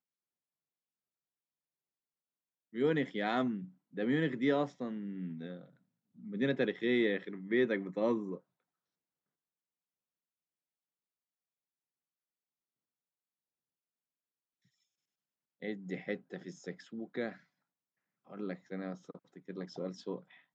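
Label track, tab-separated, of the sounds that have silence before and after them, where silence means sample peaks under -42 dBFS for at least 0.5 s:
2.750000	5.590000	sound
6.260000	8.370000	sound
15.620000	17.330000	sound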